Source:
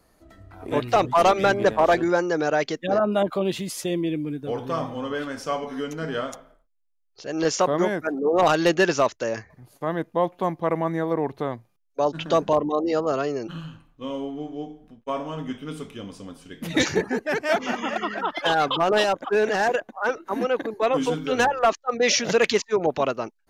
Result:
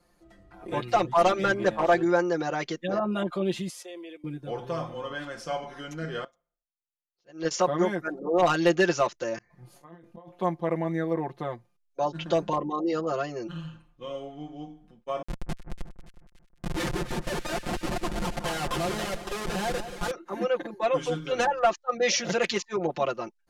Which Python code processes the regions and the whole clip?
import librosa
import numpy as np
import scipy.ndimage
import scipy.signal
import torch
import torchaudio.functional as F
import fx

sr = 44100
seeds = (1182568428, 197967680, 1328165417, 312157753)

y = fx.chain(x, sr, fx.highpass(hz=450.0, slope=24),
    fx.level_steps(step_db=13), at=(3.7, 4.24))
y = fx.chain(y, sr, fx.lowpass(hz=6900.0, slope=12),
    fx.upward_expand(threshold_db=-37.0, expansion=2.5), at=(6.24, 7.51))
y = fx.chain(y, sr, fx.auto_swell(attack_ms=439.0),
    fx.over_compress(threshold_db=-46.0, ratio=-1.0),
    fx.doubler(ms=24.0, db=-7.0), at=(9.38, 10.39))
y = fx.chain(y, sr, fx.highpass(hz=62.0, slope=24),
    fx.schmitt(flips_db=-24.5),
    fx.echo_split(split_hz=1700.0, low_ms=181, high_ms=286, feedback_pct=52, wet_db=-11), at=(15.22, 20.11))
y = scipy.signal.sosfilt(scipy.signal.butter(2, 11000.0, 'lowpass', fs=sr, output='sos'), y)
y = y + 0.95 * np.pad(y, (int(5.7 * sr / 1000.0), 0))[:len(y)]
y = y * librosa.db_to_amplitude(-7.0)